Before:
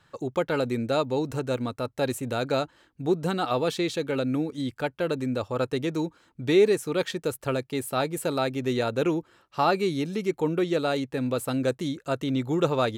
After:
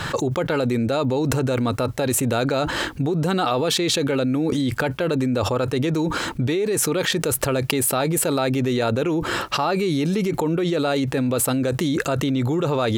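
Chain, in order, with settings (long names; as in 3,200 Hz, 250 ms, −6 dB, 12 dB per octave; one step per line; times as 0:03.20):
envelope flattener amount 100%
level −5.5 dB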